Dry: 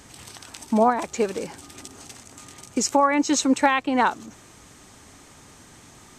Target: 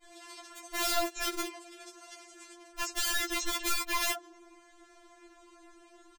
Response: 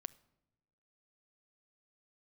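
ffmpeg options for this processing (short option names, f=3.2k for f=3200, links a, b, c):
-filter_complex "[0:a]asetnsamples=n=441:p=0,asendcmd='2.52 lowpass f 1300',lowpass=f=3.2k:p=1,aeval=exprs='(mod(13.3*val(0)+1,2)-1)/13.3':c=same,acrossover=split=220[a][b];[b]adelay=30[c];[a][c]amix=inputs=2:normalize=0,afftfilt=real='re*4*eq(mod(b,16),0)':imag='im*4*eq(mod(b,16),0)':win_size=2048:overlap=0.75"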